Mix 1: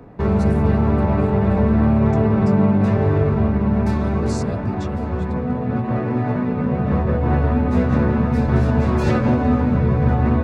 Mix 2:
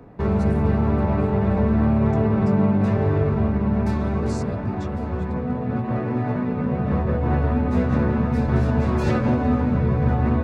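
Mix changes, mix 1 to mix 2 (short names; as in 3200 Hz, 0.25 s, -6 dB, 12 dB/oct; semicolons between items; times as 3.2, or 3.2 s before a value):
speech -6.0 dB; background -3.0 dB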